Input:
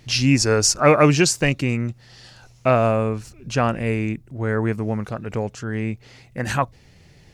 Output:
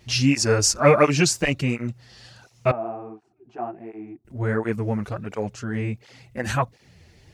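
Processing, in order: 2.71–4.25 s: two resonant band-passes 520 Hz, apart 0.99 oct; cancelling through-zero flanger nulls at 1.4 Hz, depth 7.7 ms; trim +1 dB

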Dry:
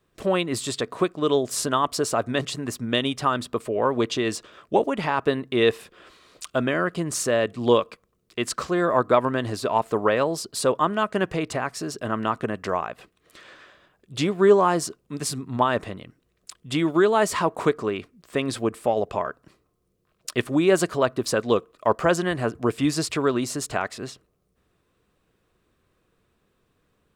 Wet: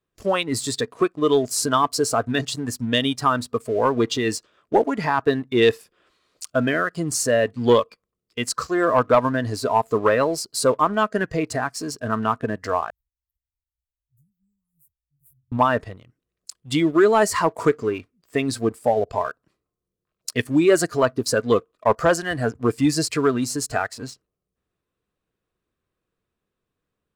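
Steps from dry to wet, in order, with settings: spectral noise reduction 11 dB; 12.90–15.52 s: inverse Chebyshev band-stop 360–4400 Hz, stop band 80 dB; waveshaping leveller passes 1

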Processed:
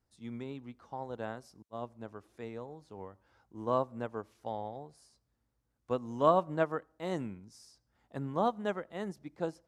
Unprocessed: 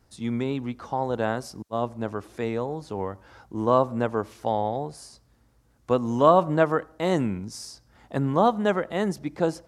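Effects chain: upward expansion 1.5:1, over -34 dBFS; trim -7.5 dB

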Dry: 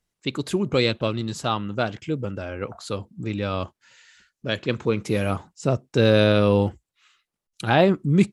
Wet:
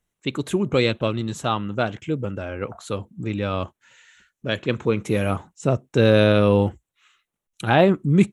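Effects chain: peaking EQ 4.8 kHz -13.5 dB 0.32 oct; trim +1.5 dB

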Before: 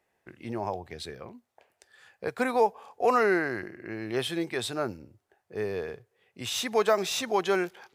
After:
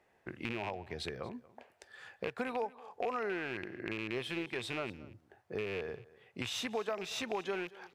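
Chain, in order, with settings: rattle on loud lows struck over -39 dBFS, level -21 dBFS; treble shelf 5.7 kHz -11 dB; compression 4:1, threshold -42 dBFS, peak gain reduction 19.5 dB; delay 233 ms -20.5 dB; trim +5 dB

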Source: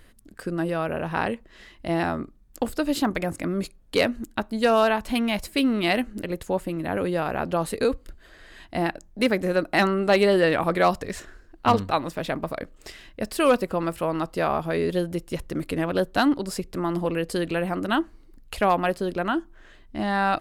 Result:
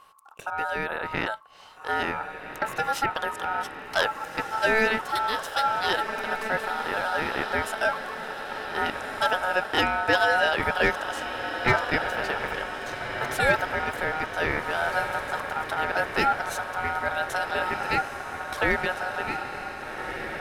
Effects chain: fade out at the end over 1.77 s; echo that smears into a reverb 1609 ms, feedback 63%, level -8 dB; ring modulator 1.1 kHz

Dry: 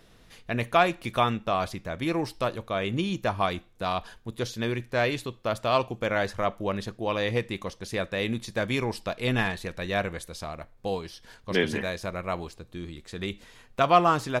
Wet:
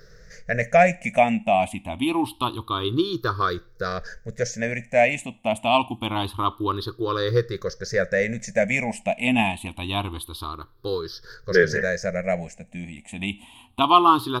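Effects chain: drifting ripple filter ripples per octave 0.57, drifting +0.26 Hz, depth 24 dB; trim -1 dB

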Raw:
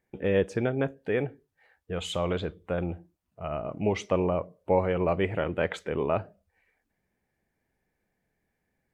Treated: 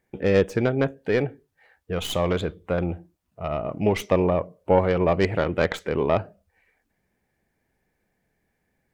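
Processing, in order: tracing distortion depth 0.08 ms; trim +5 dB

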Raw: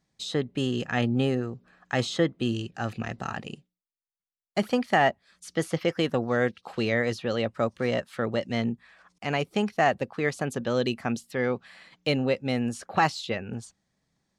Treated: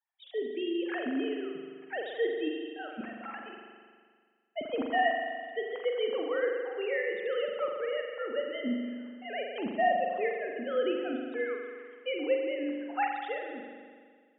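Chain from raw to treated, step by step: formants replaced by sine waves; spring tank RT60 1.8 s, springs 41 ms, chirp 50 ms, DRR 1 dB; trim -7.5 dB

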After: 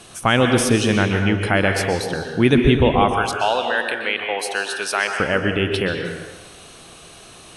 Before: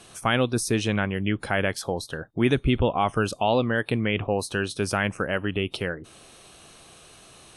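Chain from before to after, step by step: 3.12–5.20 s: high-pass 700 Hz 12 dB/octave; reverberation RT60 1.1 s, pre-delay 116 ms, DRR 4 dB; trim +6 dB

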